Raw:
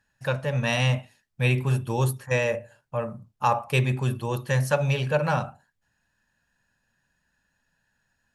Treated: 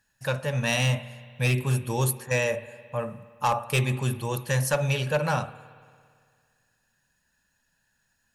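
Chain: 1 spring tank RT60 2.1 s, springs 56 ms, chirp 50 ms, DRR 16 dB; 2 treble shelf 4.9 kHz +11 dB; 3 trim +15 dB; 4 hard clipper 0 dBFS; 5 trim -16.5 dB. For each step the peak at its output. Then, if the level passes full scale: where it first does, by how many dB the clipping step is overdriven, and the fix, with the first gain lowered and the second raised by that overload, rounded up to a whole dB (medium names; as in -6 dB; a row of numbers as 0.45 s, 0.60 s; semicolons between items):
-9.5 dBFS, -7.0 dBFS, +8.0 dBFS, 0.0 dBFS, -16.5 dBFS; step 3, 8.0 dB; step 3 +7 dB, step 5 -8.5 dB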